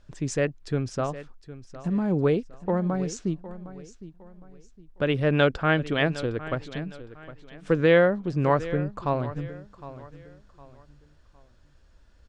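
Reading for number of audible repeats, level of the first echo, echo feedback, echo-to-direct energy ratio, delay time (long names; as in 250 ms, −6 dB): 3, −15.5 dB, 33%, −15.0 dB, 760 ms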